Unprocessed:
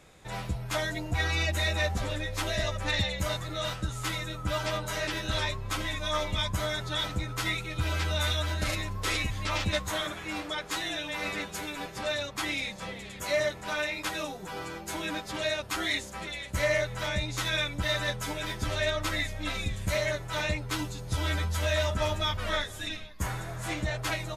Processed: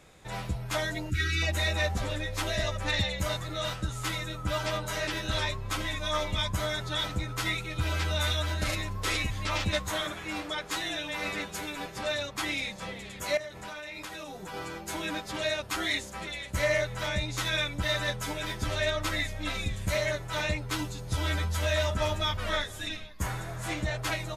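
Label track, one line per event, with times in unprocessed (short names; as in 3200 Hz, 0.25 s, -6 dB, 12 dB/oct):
1.100000	1.420000	spectral delete 420–1200 Hz
13.370000	14.540000	compressor 16:1, threshold -36 dBFS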